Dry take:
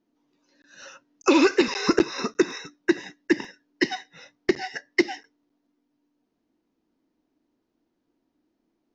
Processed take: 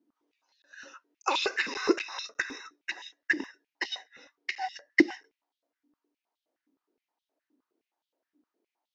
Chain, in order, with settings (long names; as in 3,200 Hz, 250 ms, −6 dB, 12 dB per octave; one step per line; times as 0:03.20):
high-pass on a step sequencer 9.6 Hz 280–3,400 Hz
level −8 dB